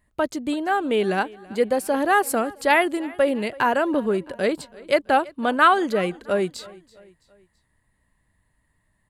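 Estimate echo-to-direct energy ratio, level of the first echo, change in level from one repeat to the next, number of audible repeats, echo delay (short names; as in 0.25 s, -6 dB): -21.0 dB, -22.0 dB, -6.5 dB, 3, 0.331 s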